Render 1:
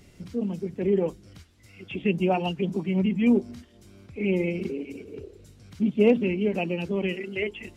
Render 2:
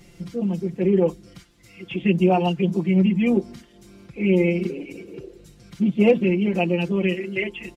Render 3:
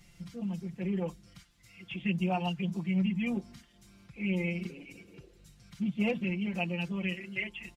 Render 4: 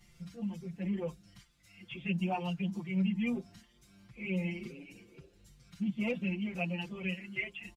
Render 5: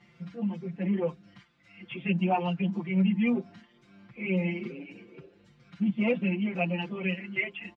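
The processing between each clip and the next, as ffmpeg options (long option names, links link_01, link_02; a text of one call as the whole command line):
ffmpeg -i in.wav -af "aecho=1:1:5.8:0.85,volume=2dB" out.wav
ffmpeg -i in.wav -af "equalizer=frequency=390:width_type=o:width=1.3:gain=-13.5,volume=-6.5dB" out.wav
ffmpeg -i in.wav -filter_complex "[0:a]asplit=2[link_01][link_02];[link_02]adelay=6.4,afreqshift=2.2[link_03];[link_01][link_03]amix=inputs=2:normalize=1" out.wav
ffmpeg -i in.wav -af "highpass=180,lowpass=2400,volume=8.5dB" out.wav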